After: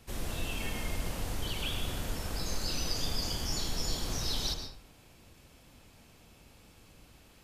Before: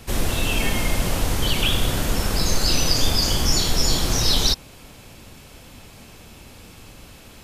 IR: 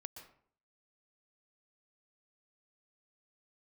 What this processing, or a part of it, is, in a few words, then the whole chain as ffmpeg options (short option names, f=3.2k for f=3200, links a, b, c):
bathroom: -filter_complex "[1:a]atrim=start_sample=2205[a];[0:a][a]afir=irnorm=-1:irlink=0,volume=-9dB"